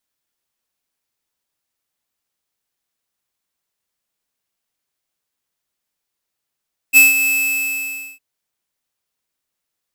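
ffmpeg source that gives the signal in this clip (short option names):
-f lavfi -i "aevalsrc='0.473*(2*lt(mod(2610*t,1),0.5)-1)':d=1.258:s=44100,afade=t=in:d=0.039,afade=t=out:st=0.039:d=0.161:silence=0.316,afade=t=out:st=0.34:d=0.918"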